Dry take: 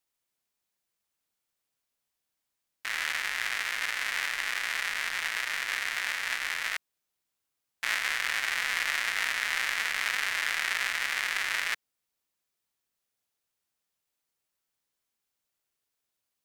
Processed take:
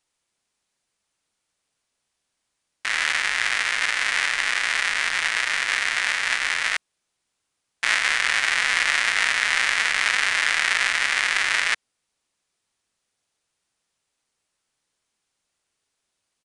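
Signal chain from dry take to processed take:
downsampling to 22,050 Hz
level +8.5 dB

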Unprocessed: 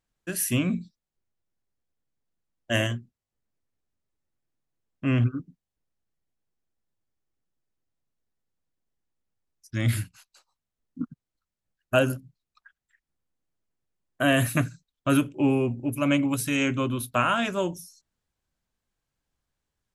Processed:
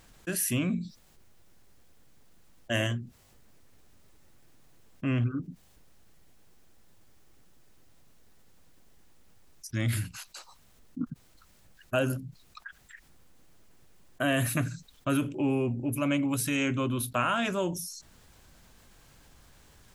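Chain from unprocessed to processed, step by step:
envelope flattener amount 50%
level −7 dB

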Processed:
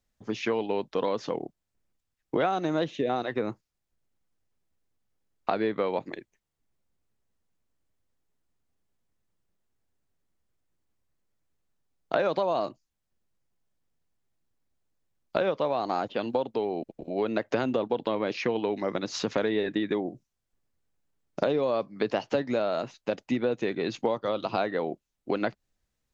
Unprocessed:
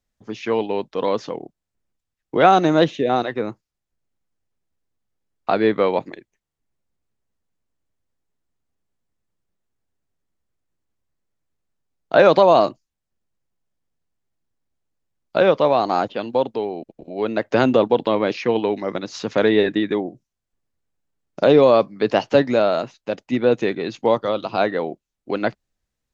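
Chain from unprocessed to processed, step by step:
downward compressor 6 to 1, threshold −24 dBFS, peak gain reduction 15 dB

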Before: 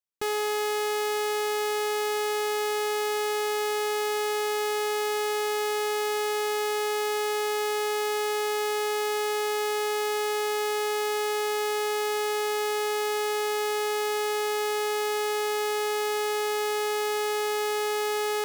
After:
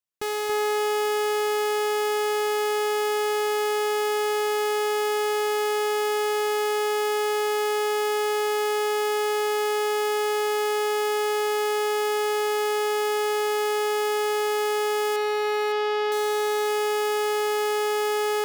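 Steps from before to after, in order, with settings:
0:15.16–0:16.12: low-pass filter 4,800 Hz 24 dB per octave
delay that swaps between a low-pass and a high-pass 280 ms, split 1,800 Hz, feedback 56%, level −5 dB

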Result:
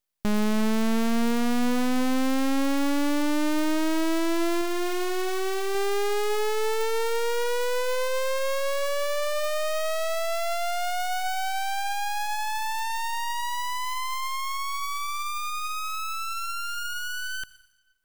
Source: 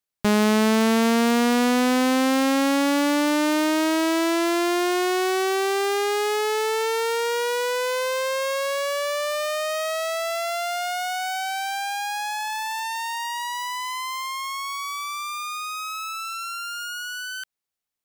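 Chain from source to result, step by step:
0:04.61–0:05.75: tilt shelving filter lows −6 dB
on a send at −18 dB: convolution reverb RT60 1.1 s, pre-delay 58 ms
on the sum: soft clipping −21 dBFS, distortion −12 dB
high-shelf EQ 11,000 Hz +4 dB
half-wave rectification
level +4.5 dB

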